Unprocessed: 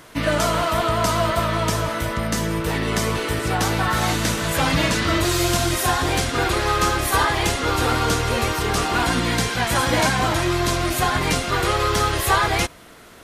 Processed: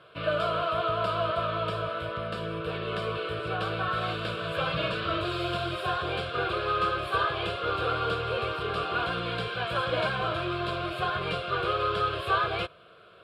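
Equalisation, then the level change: band-pass 130–3300 Hz; static phaser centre 1.3 kHz, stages 8; -4.5 dB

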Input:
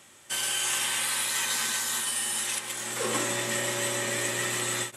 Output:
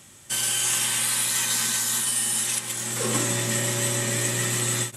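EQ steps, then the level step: tone controls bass +13 dB, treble +6 dB; 0.0 dB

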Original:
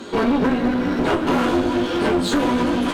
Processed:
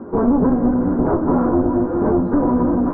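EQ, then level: inverse Chebyshev low-pass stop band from 3 kHz, stop band 50 dB; bass shelf 250 Hz +7 dB; 0.0 dB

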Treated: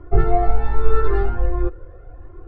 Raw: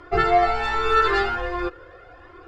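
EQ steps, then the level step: tilt EQ -4.5 dB/octave; treble shelf 2.2 kHz -10.5 dB; -5.0 dB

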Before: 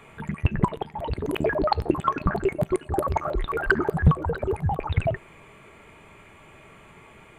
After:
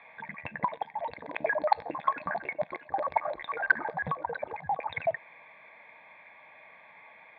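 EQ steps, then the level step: distance through air 190 m; cabinet simulation 470–3800 Hz, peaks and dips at 480 Hz +6 dB, 1.5 kHz +6 dB, 2.2 kHz +4 dB, 3.4 kHz +8 dB; static phaser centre 2 kHz, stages 8; 0.0 dB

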